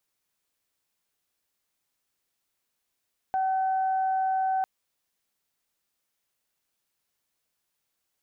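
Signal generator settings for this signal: steady additive tone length 1.30 s, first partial 761 Hz, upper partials -18 dB, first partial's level -23 dB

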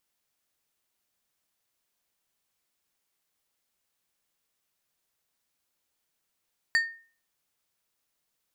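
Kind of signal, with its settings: glass hit plate, lowest mode 1.83 kHz, decay 0.41 s, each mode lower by 8.5 dB, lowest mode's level -17.5 dB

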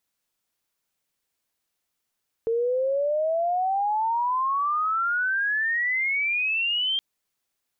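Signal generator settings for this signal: sweep logarithmic 450 Hz -> 3.2 kHz -21 dBFS -> -22 dBFS 4.52 s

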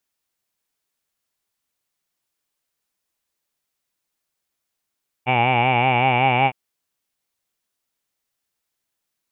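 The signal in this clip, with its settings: formant vowel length 1.26 s, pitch 122 Hz, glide +1 st, F1 810 Hz, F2 2.3 kHz, F3 2.8 kHz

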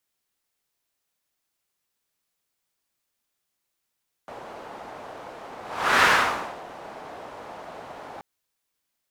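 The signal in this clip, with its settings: whoosh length 3.93 s, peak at 1.75 s, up 0.45 s, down 0.63 s, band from 730 Hz, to 1.5 kHz, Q 1.6, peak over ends 23 dB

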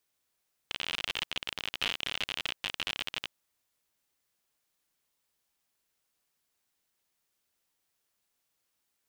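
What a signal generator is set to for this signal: random clicks 58 per s -16.5 dBFS 2.62 s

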